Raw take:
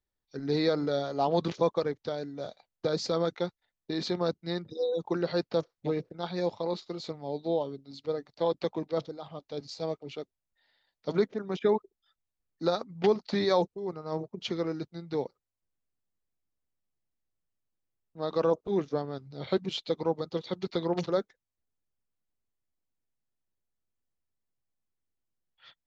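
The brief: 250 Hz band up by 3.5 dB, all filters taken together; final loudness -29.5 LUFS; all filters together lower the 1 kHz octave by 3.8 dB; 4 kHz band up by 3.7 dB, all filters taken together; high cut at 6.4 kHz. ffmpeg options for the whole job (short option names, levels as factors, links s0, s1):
-af "lowpass=6400,equalizer=f=250:t=o:g=6,equalizer=f=1000:t=o:g=-6,equalizer=f=4000:t=o:g=5,volume=1.12"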